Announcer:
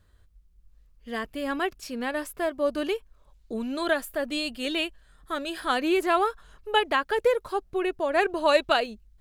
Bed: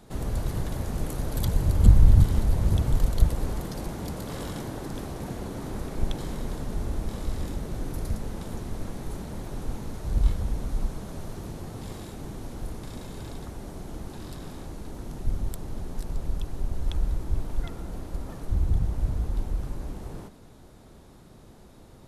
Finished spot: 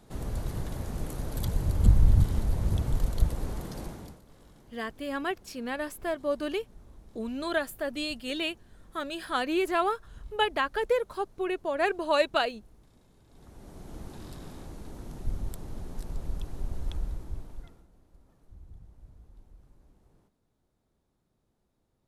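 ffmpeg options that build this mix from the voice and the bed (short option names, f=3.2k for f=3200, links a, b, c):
-filter_complex "[0:a]adelay=3650,volume=-3.5dB[a];[1:a]volume=14dB,afade=t=out:st=3.82:d=0.39:silence=0.11885,afade=t=in:st=13.28:d=0.74:silence=0.11885,afade=t=out:st=16.76:d=1.12:silence=0.0891251[b];[a][b]amix=inputs=2:normalize=0"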